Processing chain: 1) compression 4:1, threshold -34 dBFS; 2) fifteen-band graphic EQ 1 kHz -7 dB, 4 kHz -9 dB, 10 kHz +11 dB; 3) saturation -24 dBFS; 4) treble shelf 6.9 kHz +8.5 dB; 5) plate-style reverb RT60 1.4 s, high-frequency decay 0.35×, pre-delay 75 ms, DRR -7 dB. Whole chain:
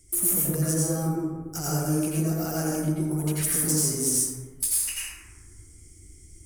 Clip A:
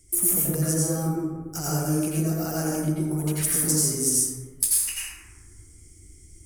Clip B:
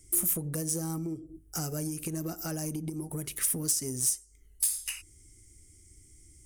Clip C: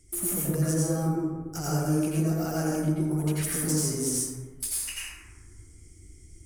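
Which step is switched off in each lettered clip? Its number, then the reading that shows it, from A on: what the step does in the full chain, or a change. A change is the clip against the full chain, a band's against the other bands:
3, distortion -17 dB; 5, 4 kHz band +4.0 dB; 4, 8 kHz band -5.5 dB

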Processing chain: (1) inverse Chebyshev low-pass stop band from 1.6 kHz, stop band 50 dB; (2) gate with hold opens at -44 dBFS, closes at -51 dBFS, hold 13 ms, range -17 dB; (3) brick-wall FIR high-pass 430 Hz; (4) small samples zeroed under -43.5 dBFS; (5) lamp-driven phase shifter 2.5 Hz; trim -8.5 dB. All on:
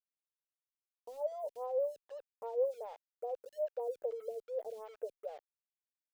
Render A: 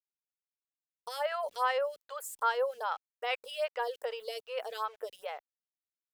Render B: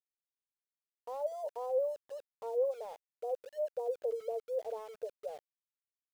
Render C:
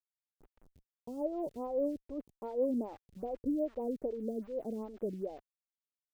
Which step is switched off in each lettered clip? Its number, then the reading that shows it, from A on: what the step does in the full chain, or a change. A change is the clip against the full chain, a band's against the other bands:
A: 1, crest factor change +2.0 dB; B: 5, momentary loudness spread change -2 LU; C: 3, crest factor change -1.5 dB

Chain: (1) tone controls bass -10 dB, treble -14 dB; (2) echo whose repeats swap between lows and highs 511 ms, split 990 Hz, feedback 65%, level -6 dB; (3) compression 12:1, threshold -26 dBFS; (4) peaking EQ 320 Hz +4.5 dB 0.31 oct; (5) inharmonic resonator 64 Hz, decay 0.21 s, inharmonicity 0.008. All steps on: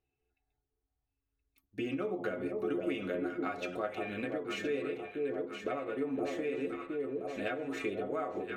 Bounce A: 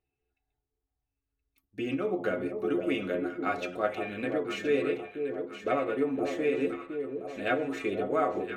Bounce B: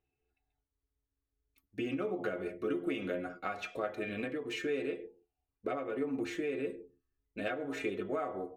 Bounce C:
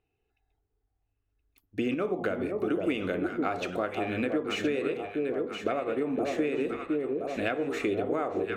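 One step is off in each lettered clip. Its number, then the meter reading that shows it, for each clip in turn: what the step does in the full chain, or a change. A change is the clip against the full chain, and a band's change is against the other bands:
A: 3, mean gain reduction 4.0 dB; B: 2, momentary loudness spread change +2 LU; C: 5, crest factor change +2.5 dB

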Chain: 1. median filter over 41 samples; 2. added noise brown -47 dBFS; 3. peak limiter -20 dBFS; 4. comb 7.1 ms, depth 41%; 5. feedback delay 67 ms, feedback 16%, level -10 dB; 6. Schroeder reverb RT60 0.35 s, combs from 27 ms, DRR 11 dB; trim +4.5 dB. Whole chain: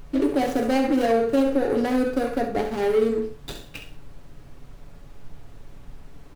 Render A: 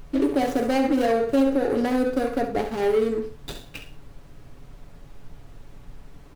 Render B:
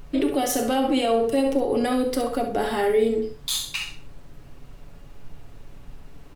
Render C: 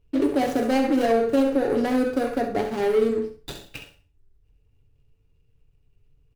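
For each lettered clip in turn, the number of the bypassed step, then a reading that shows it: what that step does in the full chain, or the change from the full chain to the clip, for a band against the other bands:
6, echo-to-direct -7.5 dB to -10.0 dB; 1, 8 kHz band +12.5 dB; 2, 125 Hz band -2.0 dB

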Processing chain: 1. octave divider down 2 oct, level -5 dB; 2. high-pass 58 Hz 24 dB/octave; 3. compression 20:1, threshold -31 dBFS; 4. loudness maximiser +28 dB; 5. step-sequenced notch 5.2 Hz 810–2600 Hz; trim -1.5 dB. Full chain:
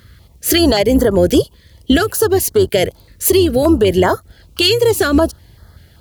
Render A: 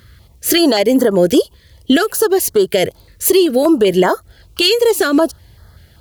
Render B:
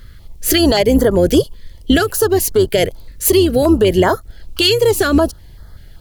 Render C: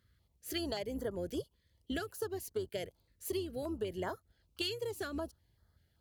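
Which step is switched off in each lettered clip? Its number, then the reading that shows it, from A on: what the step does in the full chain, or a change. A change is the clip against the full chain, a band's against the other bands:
1, 125 Hz band -7.5 dB; 2, momentary loudness spread change +1 LU; 4, crest factor change +5.5 dB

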